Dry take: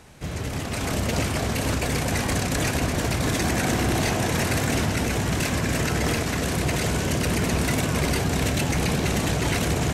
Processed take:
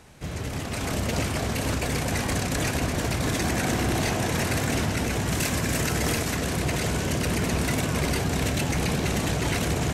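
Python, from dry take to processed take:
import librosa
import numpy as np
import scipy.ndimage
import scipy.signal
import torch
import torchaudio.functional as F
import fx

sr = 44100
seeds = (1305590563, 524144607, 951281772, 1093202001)

y = fx.high_shelf(x, sr, hz=6700.0, db=7.0, at=(5.28, 6.36))
y = F.gain(torch.from_numpy(y), -2.0).numpy()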